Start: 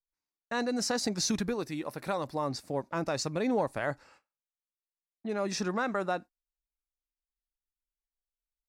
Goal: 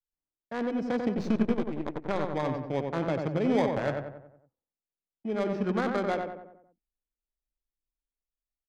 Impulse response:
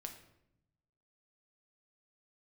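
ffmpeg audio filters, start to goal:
-filter_complex "[0:a]acrossover=split=100|1100[s0][s1][s2];[s1]acrusher=samples=16:mix=1:aa=0.000001[s3];[s0][s3][s2]amix=inputs=3:normalize=0,dynaudnorm=f=190:g=9:m=1.41,asettb=1/sr,asplit=3[s4][s5][s6];[s4]atrim=end=1.174[s7];[s5]atrim=start=1.17:end=2.3,asetpts=PTS-STARTPTS,afade=t=in:d=0.004:c=qsin,afade=t=out:st=1.126:d=0.004:c=qsin,aeval=exprs='0.168*(cos(1*acos(clip(val(0)/0.168,-1,1)))-cos(1*PI/2))+0.0168*(cos(5*acos(clip(val(0)/0.168,-1,1)))-cos(5*PI/2))+0.0299*(cos(7*acos(clip(val(0)/0.168,-1,1)))-cos(7*PI/2))+0.00841*(cos(8*acos(clip(val(0)/0.168,-1,1)))-cos(8*PI/2))':c=same[s8];[s6]atrim=start=2.296[s9];[s7][s8]acrossfade=d=0.004:c1=hsin:c2=qsin[s10];[s10][s9]acrossfade=d=0.004:c1=qsin:c2=hsin,adynamicsmooth=sensitivity=1:basefreq=820,asplit=2[s11][s12];[s12]adelay=92,lowpass=f=2000:p=1,volume=0.631,asplit=2[s13][s14];[s14]adelay=92,lowpass=f=2000:p=1,volume=0.5,asplit=2[s15][s16];[s16]adelay=92,lowpass=f=2000:p=1,volume=0.5,asplit=2[s17][s18];[s18]adelay=92,lowpass=f=2000:p=1,volume=0.5,asplit=2[s19][s20];[s20]adelay=92,lowpass=f=2000:p=1,volume=0.5,asplit=2[s21][s22];[s22]adelay=92,lowpass=f=2000:p=1,volume=0.5[s23];[s11][s13][s15][s17][s19][s21][s23]amix=inputs=7:normalize=0"

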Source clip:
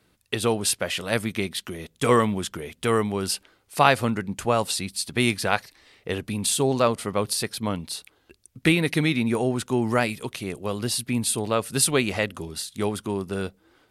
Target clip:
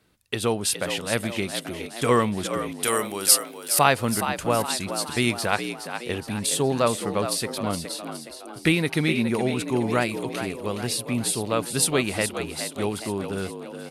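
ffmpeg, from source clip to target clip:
-filter_complex "[0:a]asettb=1/sr,asplit=3[s0][s1][s2];[s0]atrim=end=2.834[s3];[s1]atrim=start=2.83:end=3.79,asetpts=PTS-STARTPTS,afade=t=in:d=0.004:c=qsin,afade=t=out:st=0.956:d=0.004:c=qsin,aemphasis=mode=production:type=riaa[s4];[s2]atrim=start=3.786[s5];[s3][s4]acrossfade=d=0.004:c1=hsin:c2=qsin[s6];[s6][s5]acrossfade=d=0.004:c1=qsin:c2=hsin,asplit=2[s7][s8];[s8]asplit=6[s9][s10][s11][s12][s13][s14];[s9]adelay=417,afreqshift=59,volume=0.355[s15];[s10]adelay=834,afreqshift=118,volume=0.184[s16];[s11]adelay=1251,afreqshift=177,volume=0.0955[s17];[s12]adelay=1668,afreqshift=236,volume=0.0501[s18];[s13]adelay=2085,afreqshift=295,volume=0.026[s19];[s14]adelay=2502,afreqshift=354,volume=0.0135[s20];[s15][s16][s17][s18][s19][s20]amix=inputs=6:normalize=0[s21];[s7][s21]amix=inputs=2:normalize=0,volume=0.891"

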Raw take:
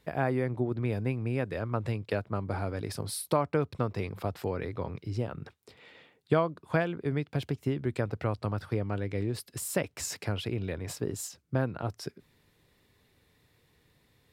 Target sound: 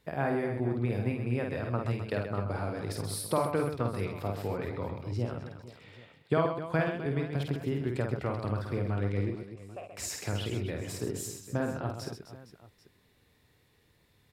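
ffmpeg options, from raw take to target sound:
-filter_complex "[0:a]asettb=1/sr,asplit=3[s0][s1][s2];[s0]atrim=end=9.304[s3];[s1]atrim=start=9.3:end=9.89,asetpts=PTS-STARTPTS,afade=t=in:d=0.004:c=qsin,afade=t=out:st=0.586:d=0.004:c=qsin,asplit=3[s4][s5][s6];[s4]bandpass=f=730:t=q:w=8,volume=1[s7];[s5]bandpass=f=1090:t=q:w=8,volume=0.501[s8];[s6]bandpass=f=2440:t=q:w=8,volume=0.355[s9];[s7][s8][s9]amix=inputs=3:normalize=0[s10];[s2]atrim=start=9.886[s11];[s3][s10]acrossfade=d=0.004:c1=hsin:c2=qsin[s12];[s12][s11]acrossfade=d=0.004:c1=qsin:c2=hsin,aecho=1:1:50|130|258|462.8|790.5:0.631|0.398|0.251|0.158|0.1,volume=0.75"

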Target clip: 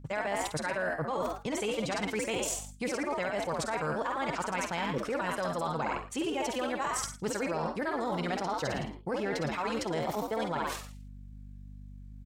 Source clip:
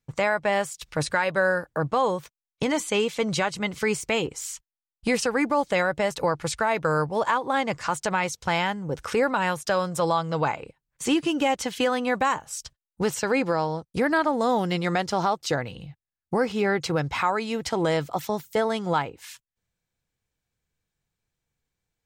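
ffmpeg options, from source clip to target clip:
-filter_complex "[0:a]asplit=7[s0][s1][s2][s3][s4][s5][s6];[s1]adelay=100,afreqshift=70,volume=0.562[s7];[s2]adelay=200,afreqshift=140,volume=0.26[s8];[s3]adelay=300,afreqshift=210,volume=0.119[s9];[s4]adelay=400,afreqshift=280,volume=0.055[s10];[s5]adelay=500,afreqshift=350,volume=0.0251[s11];[s6]adelay=600,afreqshift=420,volume=0.0116[s12];[s0][s7][s8][s9][s10][s11][s12]amix=inputs=7:normalize=0,acontrast=50,aeval=exprs='val(0)+0.00794*(sin(2*PI*50*n/s)+sin(2*PI*2*50*n/s)/2+sin(2*PI*3*50*n/s)/3+sin(2*PI*4*50*n/s)/4+sin(2*PI*5*50*n/s)/5)':c=same,areverse,acompressor=threshold=0.0562:ratio=20,areverse,atempo=1.8,volume=0.708"

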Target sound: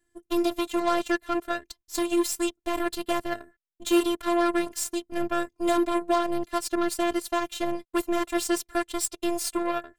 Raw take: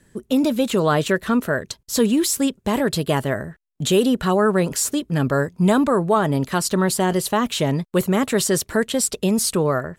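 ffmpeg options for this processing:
-af "aeval=exprs='0.501*(cos(1*acos(clip(val(0)/0.501,-1,1)))-cos(1*PI/2))+0.00316*(cos(5*acos(clip(val(0)/0.501,-1,1)))-cos(5*PI/2))+0.0562*(cos(7*acos(clip(val(0)/0.501,-1,1)))-cos(7*PI/2))+0.00794*(cos(8*acos(clip(val(0)/0.501,-1,1)))-cos(8*PI/2))':c=same,afftfilt=real='hypot(re,im)*cos(PI*b)':imag='0':win_size=512:overlap=0.75,volume=0.794"

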